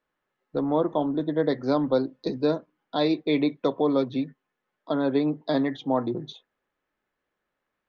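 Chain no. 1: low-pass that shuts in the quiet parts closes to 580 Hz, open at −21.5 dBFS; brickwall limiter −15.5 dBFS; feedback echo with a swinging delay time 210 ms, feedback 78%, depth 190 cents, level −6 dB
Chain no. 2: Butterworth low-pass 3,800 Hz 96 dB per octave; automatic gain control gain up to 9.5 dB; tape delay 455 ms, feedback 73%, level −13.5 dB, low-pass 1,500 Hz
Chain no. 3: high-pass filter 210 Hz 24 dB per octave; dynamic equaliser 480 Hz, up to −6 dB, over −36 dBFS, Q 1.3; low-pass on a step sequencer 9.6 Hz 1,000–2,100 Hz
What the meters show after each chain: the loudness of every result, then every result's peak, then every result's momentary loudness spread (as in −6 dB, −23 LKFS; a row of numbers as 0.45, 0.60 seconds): −26.5, −18.0, −28.0 LKFS; −10.5, −2.5, −9.0 dBFS; 11, 15, 8 LU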